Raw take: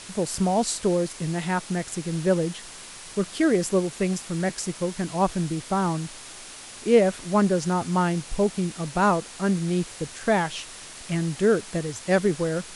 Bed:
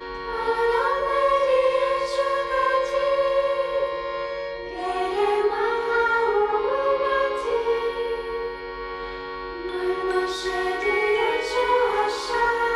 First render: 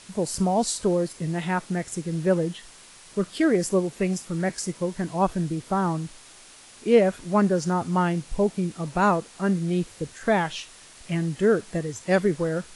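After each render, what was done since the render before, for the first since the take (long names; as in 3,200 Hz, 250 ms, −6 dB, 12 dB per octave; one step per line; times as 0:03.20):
noise reduction from a noise print 7 dB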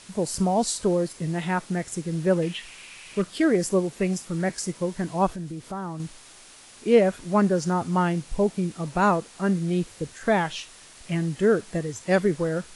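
0:02.42–0:03.22: parametric band 2,500 Hz +14.5 dB 0.66 octaves
0:05.33–0:06.00: downward compressor 2 to 1, threshold −36 dBFS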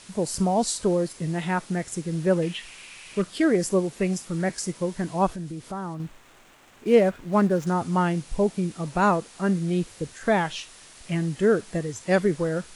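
0:05.94–0:07.67: running median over 9 samples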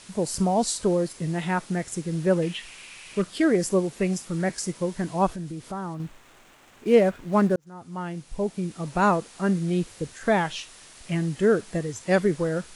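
0:07.56–0:09.03: fade in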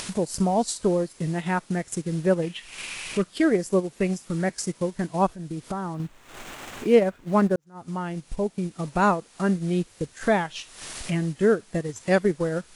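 transient designer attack +1 dB, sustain −8 dB
upward compression, threshold −25 dBFS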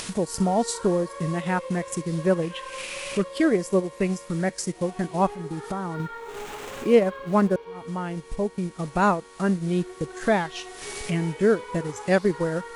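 mix in bed −17 dB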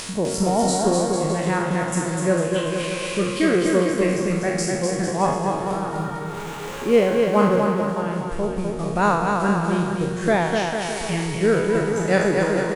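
peak hold with a decay on every bin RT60 0.85 s
bouncing-ball delay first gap 250 ms, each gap 0.8×, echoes 5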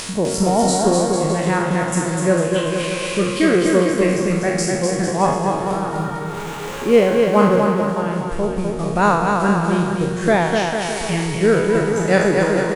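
level +3.5 dB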